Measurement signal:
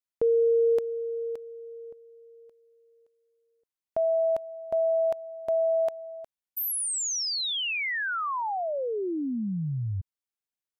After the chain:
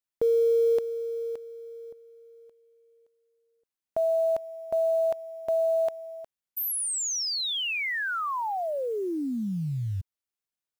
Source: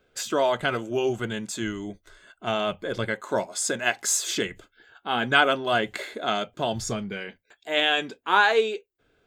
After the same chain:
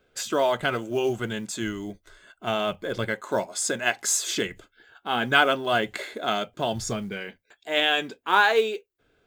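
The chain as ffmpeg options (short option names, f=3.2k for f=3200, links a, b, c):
-af "acrusher=bits=8:mode=log:mix=0:aa=0.000001"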